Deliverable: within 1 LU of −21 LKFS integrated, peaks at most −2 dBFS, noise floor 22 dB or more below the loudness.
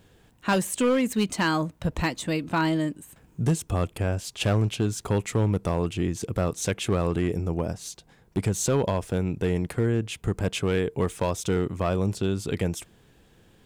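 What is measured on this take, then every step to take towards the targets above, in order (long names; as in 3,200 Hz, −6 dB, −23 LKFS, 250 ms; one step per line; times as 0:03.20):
share of clipped samples 1.2%; peaks flattened at −17.0 dBFS; integrated loudness −26.5 LKFS; sample peak −17.0 dBFS; target loudness −21.0 LKFS
→ clipped peaks rebuilt −17 dBFS
level +5.5 dB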